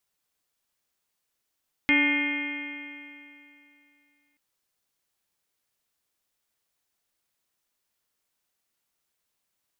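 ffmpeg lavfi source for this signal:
-f lavfi -i "aevalsrc='0.075*pow(10,-3*t/2.75)*sin(2*PI*286.36*t)+0.0119*pow(10,-3*t/2.75)*sin(2*PI*574.85*t)+0.0178*pow(10,-3*t/2.75)*sin(2*PI*867.6*t)+0.00794*pow(10,-3*t/2.75)*sin(2*PI*1166.66*t)+0.015*pow(10,-3*t/2.75)*sin(2*PI*1474.01*t)+0.0335*pow(10,-3*t/2.75)*sin(2*PI*1791.56*t)+0.112*pow(10,-3*t/2.75)*sin(2*PI*2121.08*t)+0.0473*pow(10,-3*t/2.75)*sin(2*PI*2464.25*t)+0.0133*pow(10,-3*t/2.75)*sin(2*PI*2822.61*t)+0.0188*pow(10,-3*t/2.75)*sin(2*PI*3197.58*t)':d=2.48:s=44100"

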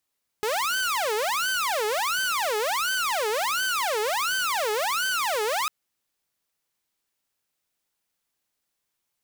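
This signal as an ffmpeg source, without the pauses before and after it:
-f lavfi -i "aevalsrc='0.0891*(2*mod((979.5*t-560.5/(2*PI*1.4)*sin(2*PI*1.4*t)),1)-1)':d=5.25:s=44100"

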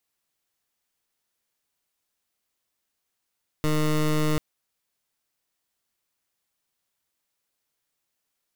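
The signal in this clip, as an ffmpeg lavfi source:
-f lavfi -i "aevalsrc='0.075*(2*lt(mod(153*t,1),0.19)-1)':d=0.74:s=44100"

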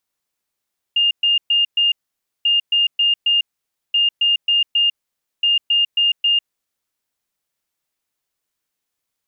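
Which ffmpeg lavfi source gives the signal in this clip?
-f lavfi -i "aevalsrc='0.237*sin(2*PI*2820*t)*clip(min(mod(mod(t,1.49),0.27),0.15-mod(mod(t,1.49),0.27))/0.005,0,1)*lt(mod(t,1.49),1.08)':d=5.96:s=44100"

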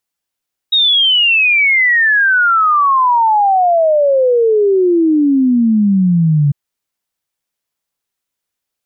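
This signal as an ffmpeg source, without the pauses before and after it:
-f lavfi -i "aevalsrc='0.398*clip(min(t,5.8-t)/0.01,0,1)*sin(2*PI*3800*5.8/log(140/3800)*(exp(log(140/3800)*t/5.8)-1))':d=5.8:s=44100"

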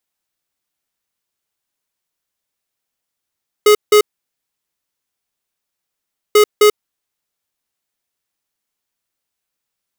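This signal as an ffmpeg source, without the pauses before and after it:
-f lavfi -i "aevalsrc='0.398*(2*lt(mod(420*t,1),0.5)-1)*clip(min(mod(mod(t,2.69),0.26),0.09-mod(mod(t,2.69),0.26))/0.005,0,1)*lt(mod(t,2.69),0.52)':d=5.38:s=44100"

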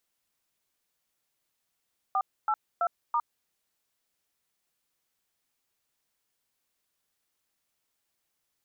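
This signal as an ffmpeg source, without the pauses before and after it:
-f lavfi -i "aevalsrc='0.0501*clip(min(mod(t,0.33),0.06-mod(t,0.33))/0.002,0,1)*(eq(floor(t/0.33),0)*(sin(2*PI*770*mod(t,0.33))+sin(2*PI*1209*mod(t,0.33)))+eq(floor(t/0.33),1)*(sin(2*PI*852*mod(t,0.33))+sin(2*PI*1336*mod(t,0.33)))+eq(floor(t/0.33),2)*(sin(2*PI*697*mod(t,0.33))+sin(2*PI*1336*mod(t,0.33)))+eq(floor(t/0.33),3)*(sin(2*PI*941*mod(t,0.33))+sin(2*PI*1209*mod(t,0.33))))':d=1.32:s=44100"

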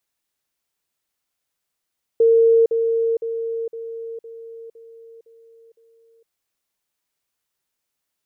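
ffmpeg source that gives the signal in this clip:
-f lavfi -i "aevalsrc='pow(10,(-10.5-6*floor(t/0.51))/20)*sin(2*PI*457*t)*clip(min(mod(t,0.51),0.46-mod(t,0.51))/0.005,0,1)':d=4.08:s=44100"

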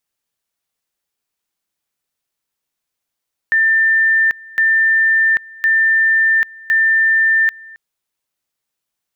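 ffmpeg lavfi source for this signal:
-f lavfi -i "aevalsrc='pow(10,(-10-24*gte(mod(t,1.06),0.79))/20)*sin(2*PI*1790*t)':d=4.24:s=44100"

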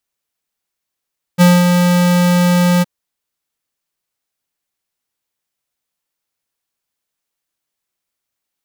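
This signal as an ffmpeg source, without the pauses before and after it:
-f lavfi -i "aevalsrc='0.473*(2*lt(mod(177*t,1),0.5)-1)':d=1.465:s=44100,afade=t=in:d=0.033,afade=t=out:st=0.033:d=0.216:silence=0.562,afade=t=out:st=1.44:d=0.025"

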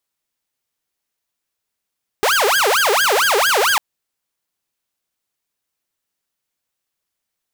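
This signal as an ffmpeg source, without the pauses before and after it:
-f lavfi -i "aevalsrc='0.299*(2*mod((1017*t-623/(2*PI*4.4)*sin(2*PI*4.4*t)),1)-1)':d=1.55:s=44100"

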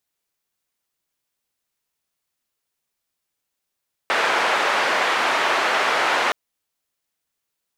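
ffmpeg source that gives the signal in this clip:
-f lavfi -i "anoisesrc=c=white:d=2.22:r=44100:seed=1,highpass=f=550,lowpass=f=1700,volume=-2.9dB"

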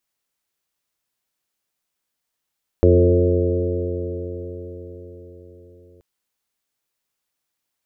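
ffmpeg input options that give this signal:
-f lavfi -i "aevalsrc='0.224*pow(10,-3*t/4.98)*sin(2*PI*87.27*t)+0.0631*pow(10,-3*t/4.98)*sin(2*PI*174.92*t)+0.0794*pow(10,-3*t/4.98)*sin(2*PI*263.36*t)+0.178*pow(10,-3*t/4.98)*sin(2*PI*352.96*t)+0.178*pow(10,-3*t/4.98)*sin(2*PI*444.1*t)+0.112*pow(10,-3*t/4.98)*sin(2*PI*537.14*t)+0.0316*pow(10,-3*t/4.98)*sin(2*PI*632.43*t)':d=3.18:s=44100"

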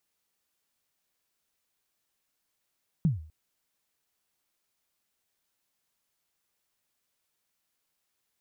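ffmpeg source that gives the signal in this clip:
-f lavfi -i "aevalsrc='0.133*pow(10,-3*t/0.45)*sin(2*PI*(180*0.147/log(78/180)*(exp(log(78/180)*min(t,0.147)/0.147)-1)+78*max(t-0.147,0)))':d=0.25:s=44100"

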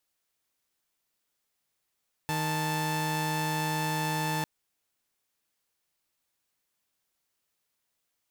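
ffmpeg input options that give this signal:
-f lavfi -i "aevalsrc='0.0398*((2*mod(155.56*t,1)-1)+(2*mod(880*t,1)-1))':d=2.15:s=44100"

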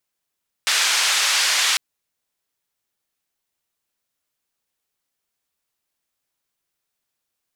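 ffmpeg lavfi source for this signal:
-f lavfi -i "anoisesrc=c=white:d=1.1:r=44100:seed=1,highpass=f=1200,lowpass=f=5800,volume=-7.6dB"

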